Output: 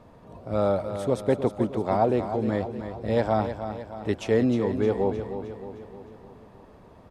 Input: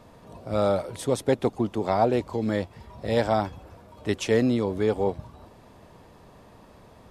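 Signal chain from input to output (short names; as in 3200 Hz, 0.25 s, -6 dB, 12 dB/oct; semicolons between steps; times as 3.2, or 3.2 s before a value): high shelf 2700 Hz -10.5 dB; feedback echo 0.309 s, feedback 53%, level -9.5 dB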